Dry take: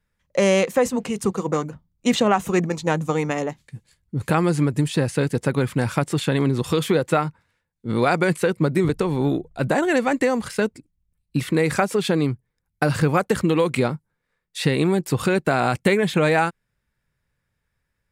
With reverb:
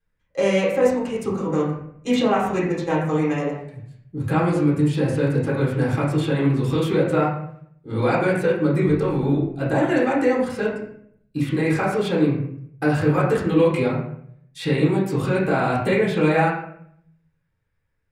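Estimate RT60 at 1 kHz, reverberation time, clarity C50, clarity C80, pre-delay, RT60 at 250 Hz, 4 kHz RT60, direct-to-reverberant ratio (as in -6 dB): 0.60 s, 0.65 s, 2.5 dB, 6.5 dB, 3 ms, 0.75 s, 0.45 s, -7.0 dB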